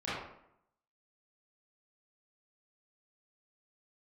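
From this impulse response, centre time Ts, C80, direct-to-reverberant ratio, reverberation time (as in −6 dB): 74 ms, 3.0 dB, −12.0 dB, 0.75 s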